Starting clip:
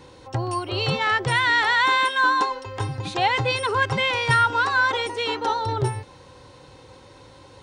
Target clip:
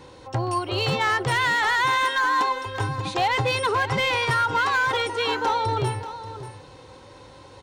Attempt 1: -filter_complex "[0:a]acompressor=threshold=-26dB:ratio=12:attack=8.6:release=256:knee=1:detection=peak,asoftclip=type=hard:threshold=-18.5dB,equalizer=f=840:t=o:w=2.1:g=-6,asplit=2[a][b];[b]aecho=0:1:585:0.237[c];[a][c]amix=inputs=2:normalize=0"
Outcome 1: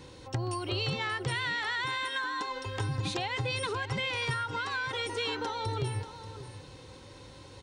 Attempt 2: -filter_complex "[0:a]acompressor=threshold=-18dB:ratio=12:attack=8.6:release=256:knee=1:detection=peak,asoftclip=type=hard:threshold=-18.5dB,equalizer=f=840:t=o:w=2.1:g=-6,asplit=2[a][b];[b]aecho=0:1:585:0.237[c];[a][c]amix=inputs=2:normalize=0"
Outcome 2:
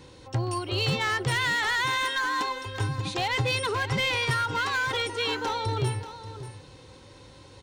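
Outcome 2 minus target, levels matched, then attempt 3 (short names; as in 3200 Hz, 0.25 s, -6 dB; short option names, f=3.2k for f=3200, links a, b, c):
1000 Hz band -3.5 dB
-filter_complex "[0:a]acompressor=threshold=-18dB:ratio=12:attack=8.6:release=256:knee=1:detection=peak,asoftclip=type=hard:threshold=-18.5dB,equalizer=f=840:t=o:w=2.1:g=2,asplit=2[a][b];[b]aecho=0:1:585:0.237[c];[a][c]amix=inputs=2:normalize=0"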